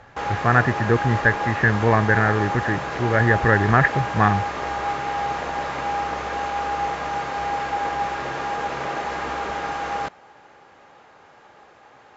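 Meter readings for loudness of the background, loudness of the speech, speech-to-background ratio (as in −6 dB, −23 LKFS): −26.5 LKFS, −20.0 LKFS, 6.5 dB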